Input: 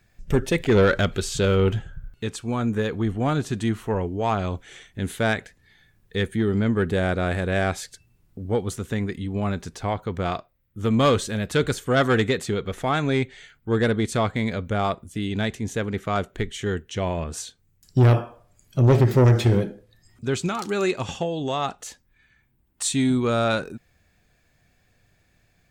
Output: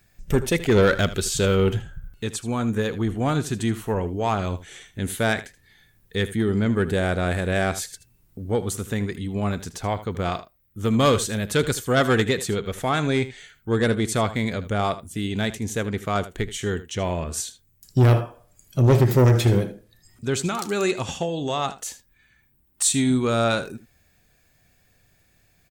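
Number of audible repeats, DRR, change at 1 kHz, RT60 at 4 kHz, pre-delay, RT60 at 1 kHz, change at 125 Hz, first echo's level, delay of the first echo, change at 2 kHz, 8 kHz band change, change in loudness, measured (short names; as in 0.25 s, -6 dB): 1, none, +0.5 dB, none, none, none, 0.0 dB, -15.0 dB, 78 ms, +0.5 dB, +5.5 dB, +0.5 dB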